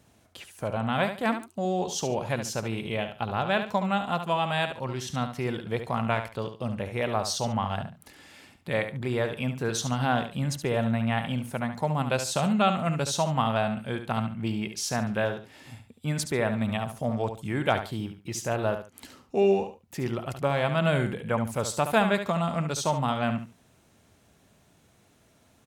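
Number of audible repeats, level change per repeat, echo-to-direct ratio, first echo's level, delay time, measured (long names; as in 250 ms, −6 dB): 2, −12.5 dB, −9.0 dB, −9.0 dB, 71 ms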